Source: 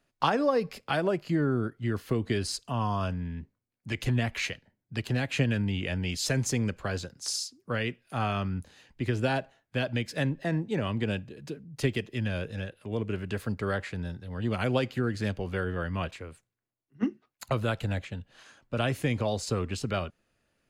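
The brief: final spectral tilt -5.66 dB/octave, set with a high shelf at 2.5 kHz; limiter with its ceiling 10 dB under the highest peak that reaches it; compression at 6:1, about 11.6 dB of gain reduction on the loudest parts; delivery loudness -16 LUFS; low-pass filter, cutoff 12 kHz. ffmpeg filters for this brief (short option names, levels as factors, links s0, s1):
-af "lowpass=12000,highshelf=f=2500:g=-7,acompressor=threshold=0.02:ratio=6,volume=17.8,alimiter=limit=0.562:level=0:latency=1"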